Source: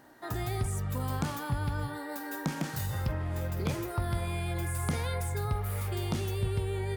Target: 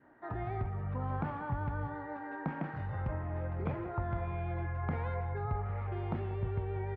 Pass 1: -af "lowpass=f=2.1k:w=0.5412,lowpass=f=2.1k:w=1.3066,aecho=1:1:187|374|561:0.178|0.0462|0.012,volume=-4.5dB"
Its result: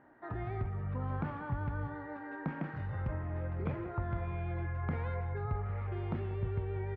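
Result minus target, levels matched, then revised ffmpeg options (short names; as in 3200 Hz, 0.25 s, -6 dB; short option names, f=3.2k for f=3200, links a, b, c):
1000 Hz band -3.0 dB
-af "lowpass=f=2.1k:w=0.5412,lowpass=f=2.1k:w=1.3066,adynamicequalizer=threshold=0.00178:dfrequency=790:dqfactor=1.9:tfrequency=790:tqfactor=1.9:attack=5:release=100:ratio=0.333:range=2.5:mode=boostabove:tftype=bell,aecho=1:1:187|374|561:0.178|0.0462|0.012,volume=-4.5dB"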